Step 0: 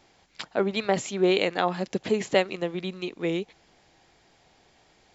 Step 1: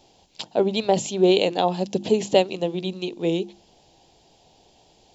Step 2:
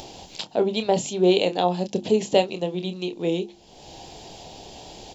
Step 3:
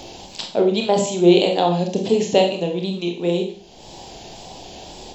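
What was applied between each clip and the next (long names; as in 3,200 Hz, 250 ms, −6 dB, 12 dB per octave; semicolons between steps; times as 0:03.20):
flat-topped bell 1,600 Hz −14 dB 1.2 octaves; mains-hum notches 50/100/150/200/250/300/350 Hz; level +5 dB
upward compression, threshold −26 dBFS; double-tracking delay 28 ms −9.5 dB; level −1.5 dB
tape wow and flutter 68 cents; four-comb reverb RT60 0.43 s, combs from 31 ms, DRR 3.5 dB; level +2.5 dB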